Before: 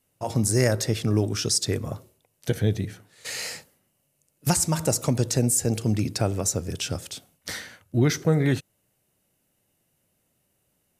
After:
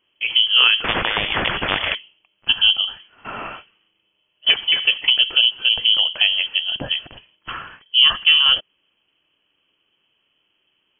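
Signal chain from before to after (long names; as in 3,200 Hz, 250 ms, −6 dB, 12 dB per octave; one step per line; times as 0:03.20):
voice inversion scrambler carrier 3,200 Hz
0:00.84–0:01.95: every bin compressed towards the loudest bin 10 to 1
level +6.5 dB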